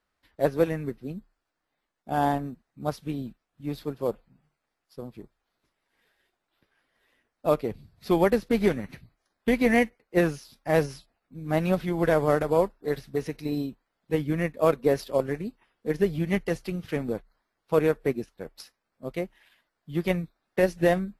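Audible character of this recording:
background noise floor −82 dBFS
spectral slope −4.5 dB per octave

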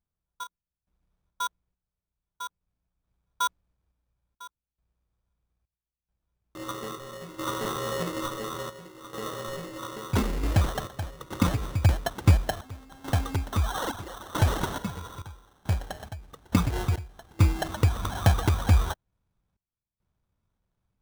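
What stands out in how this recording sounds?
aliases and images of a low sample rate 2,400 Hz, jitter 0%
sample-and-hold tremolo 2.3 Hz, depth 95%
Ogg Vorbis

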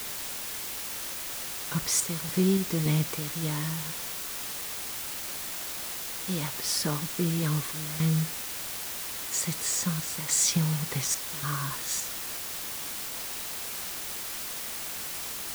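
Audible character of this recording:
sample-and-hold tremolo, depth 90%
a quantiser's noise floor 6 bits, dither triangular

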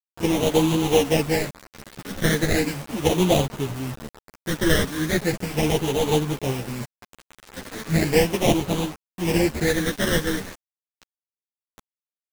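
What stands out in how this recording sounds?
aliases and images of a low sample rate 1,300 Hz, jitter 20%
phaser sweep stages 12, 0.37 Hz, lowest notch 790–1,700 Hz
a quantiser's noise floor 6 bits, dither none
a shimmering, thickened sound

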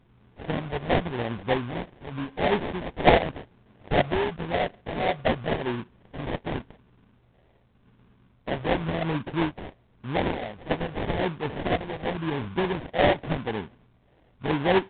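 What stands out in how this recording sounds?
phaser sweep stages 2, 0.9 Hz, lowest notch 260–1,400 Hz
aliases and images of a low sample rate 1,300 Hz, jitter 20%
mu-law

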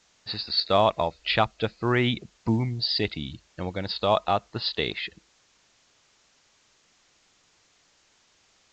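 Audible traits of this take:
a quantiser's noise floor 10 bits, dither triangular
A-law companding

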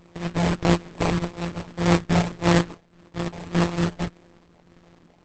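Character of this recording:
a buzz of ramps at a fixed pitch in blocks of 256 samples
phaser sweep stages 8, 1.7 Hz, lowest notch 420–2,400 Hz
aliases and images of a low sample rate 1,500 Hz, jitter 20%
Opus

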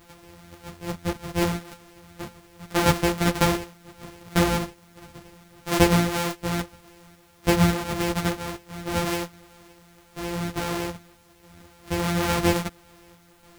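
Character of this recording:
a buzz of ramps at a fixed pitch in blocks of 256 samples
sample-and-hold tremolo 3.5 Hz
a quantiser's noise floor 12 bits, dither triangular
a shimmering, thickened sound

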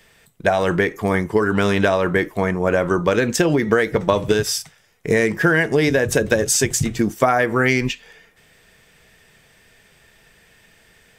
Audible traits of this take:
background noise floor −55 dBFS
spectral slope −4.5 dB per octave

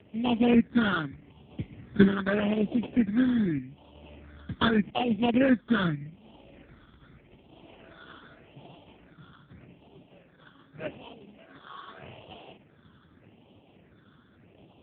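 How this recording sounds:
aliases and images of a low sample rate 2,100 Hz, jitter 20%
phaser sweep stages 8, 0.83 Hz, lowest notch 730–1,500 Hz
AMR narrowband

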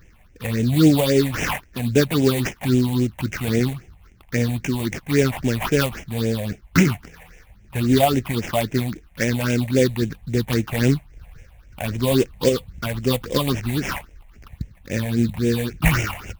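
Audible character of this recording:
aliases and images of a low sample rate 4,100 Hz, jitter 20%
phaser sweep stages 6, 3.7 Hz, lowest notch 340–1,200 Hz
AAC

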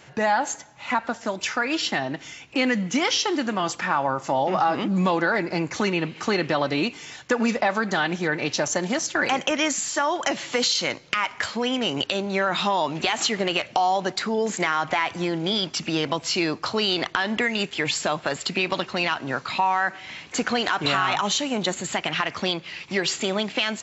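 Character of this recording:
background noise floor −45 dBFS
spectral slope −3.0 dB per octave

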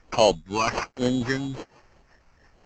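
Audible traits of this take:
a quantiser's noise floor 12 bits, dither none
phaser sweep stages 8, 1.2 Hz, lowest notch 520–2,700 Hz
aliases and images of a low sample rate 3,600 Hz, jitter 0%
mu-law

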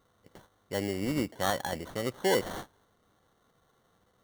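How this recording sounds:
aliases and images of a low sample rate 2,500 Hz, jitter 0%

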